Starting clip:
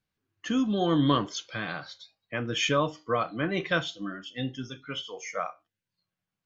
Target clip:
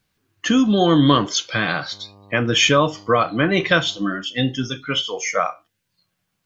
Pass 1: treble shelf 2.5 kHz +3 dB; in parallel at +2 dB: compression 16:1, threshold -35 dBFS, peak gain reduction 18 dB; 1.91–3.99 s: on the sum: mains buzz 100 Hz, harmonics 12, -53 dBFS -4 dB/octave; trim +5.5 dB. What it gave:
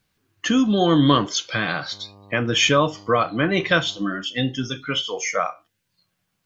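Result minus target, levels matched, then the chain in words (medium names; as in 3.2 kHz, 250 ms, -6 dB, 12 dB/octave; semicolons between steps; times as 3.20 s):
compression: peak gain reduction +7 dB
treble shelf 2.5 kHz +3 dB; in parallel at +2 dB: compression 16:1, threshold -27.5 dBFS, peak gain reduction 11 dB; 1.91–3.99 s: on the sum: mains buzz 100 Hz, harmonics 12, -53 dBFS -4 dB/octave; trim +5.5 dB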